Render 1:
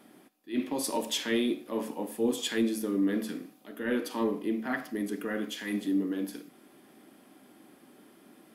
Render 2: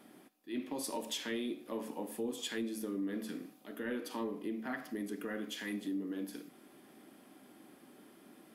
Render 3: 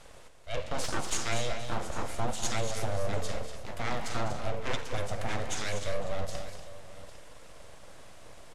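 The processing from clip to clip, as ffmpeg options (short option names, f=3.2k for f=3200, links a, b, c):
-af "acompressor=threshold=-36dB:ratio=2.5,volume=-2dB"
-filter_complex "[0:a]aeval=exprs='abs(val(0))':c=same,lowpass=f=7.3k:t=q:w=1.8,asplit=2[a][b];[b]aecho=0:1:201|241|801:0.251|0.355|0.158[c];[a][c]amix=inputs=2:normalize=0,volume=8.5dB"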